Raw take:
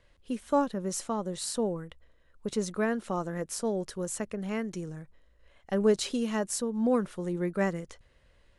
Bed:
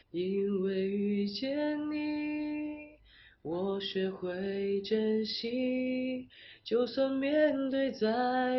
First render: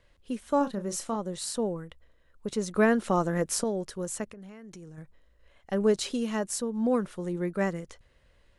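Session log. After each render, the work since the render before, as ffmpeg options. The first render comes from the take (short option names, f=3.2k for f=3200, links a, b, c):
-filter_complex "[0:a]asettb=1/sr,asplit=3[a][b][c];[a]atrim=end=0.574[d];[b]atrim=start=0.57:end=1.16,asetpts=PTS-STARTPTS,afade=t=in:d=0.004:c=qsin,afade=t=out:st=0.586:d=0.004:c=qsin,asplit=2[e][f];[f]adelay=35,volume=-10dB[g];[e][g]amix=inputs=2:normalize=0,atrim=end_sample=26019[h];[c]atrim=start=1.156[i];[d][h]acrossfade=d=0.004:c1=hsin:c2=qsin[j];[j][i]acrossfade=d=0.004:c1=qsin:c2=hsin,asettb=1/sr,asplit=3[k][l][m];[k]atrim=end=2.754[n];[l]atrim=start=2.75:end=3.64,asetpts=PTS-STARTPTS,afade=t=in:d=0.004:c=qsin,afade=t=out:st=0.886:d=0.004:c=qsin,acontrast=63[o];[m]atrim=start=3.636[p];[n][o]acrossfade=d=0.004:c1=hsin:c2=qsin[q];[q][p]acrossfade=d=0.004:c1=qsin:c2=hsin,asettb=1/sr,asplit=3[r][s][t];[r]atrim=end=4.244[u];[s]atrim=start=4.24:end=4.98,asetpts=PTS-STARTPTS,afade=t=in:d=0.004:c=qsin,afade=t=out:st=0.736:d=0.004:c=qsin,acompressor=threshold=-42dB:ratio=10:attack=3.2:release=140:knee=1:detection=peak[v];[t]atrim=start=4.976[w];[u][v]acrossfade=d=0.004:c1=hsin:c2=qsin[x];[x][w]acrossfade=d=0.004:c1=qsin:c2=hsin"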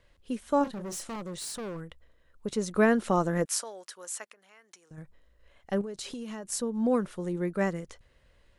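-filter_complex "[0:a]asettb=1/sr,asplit=3[a][b][c];[a]atrim=end=0.644[d];[b]atrim=start=0.64:end=1.81,asetpts=PTS-STARTPTS,afade=t=in:d=0.004:c=qsin,afade=t=out:st=1.166:d=0.004:c=qsin,asoftclip=type=hard:threshold=-34.5dB[e];[c]atrim=start=1.806[f];[d][e]acrossfade=d=0.004:c1=hsin:c2=qsin[g];[g][f]acrossfade=d=0.004:c1=qsin:c2=hsin,asettb=1/sr,asplit=3[h][i][j];[h]atrim=end=3.454[k];[i]atrim=start=3.45:end=4.91,asetpts=PTS-STARTPTS,afade=t=in:d=0.004:c=qsin,afade=t=out:st=1.456:d=0.004:c=qsin,highpass=970[l];[j]atrim=start=4.906[m];[k][l]acrossfade=d=0.004:c1=hsin:c2=qsin[n];[n][m]acrossfade=d=0.004:c1=qsin:c2=hsin,asettb=1/sr,asplit=3[o][p][q];[o]atrim=end=5.814[r];[p]atrim=start=5.81:end=6.52,asetpts=PTS-STARTPTS,afade=t=in:d=0.004:c=qsin,afade=t=out:st=0.706:d=0.004:c=qsin,acompressor=threshold=-34dB:ratio=16:attack=3.2:release=140:knee=1:detection=peak[s];[q]atrim=start=6.516[t];[r][s]acrossfade=d=0.004:c1=hsin:c2=qsin[u];[u][t]acrossfade=d=0.004:c1=qsin:c2=hsin"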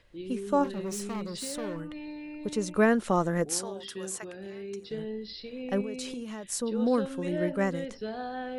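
-filter_complex "[1:a]volume=-6.5dB[a];[0:a][a]amix=inputs=2:normalize=0"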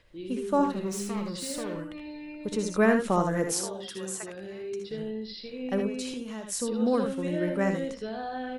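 -af "aecho=1:1:63|78:0.335|0.447"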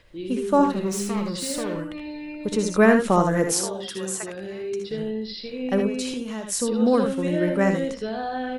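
-af "volume=6dB"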